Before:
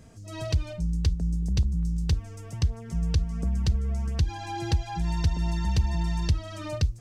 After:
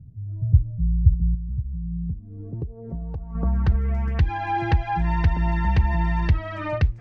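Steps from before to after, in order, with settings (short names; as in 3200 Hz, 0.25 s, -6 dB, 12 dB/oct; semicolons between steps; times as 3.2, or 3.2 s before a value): dynamic EQ 840 Hz, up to +5 dB, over -50 dBFS, Q 2.1; 1.34–3.35 compressor 12:1, threshold -32 dBFS, peak gain reduction 15 dB; low-pass sweep 120 Hz -> 2000 Hz, 1.7–3.88; gain +4.5 dB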